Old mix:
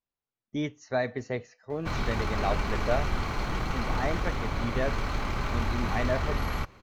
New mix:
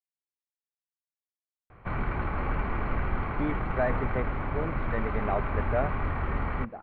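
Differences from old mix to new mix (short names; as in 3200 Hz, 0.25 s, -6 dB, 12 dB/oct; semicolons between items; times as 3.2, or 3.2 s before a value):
speech: entry +2.85 s; master: add LPF 2200 Hz 24 dB/oct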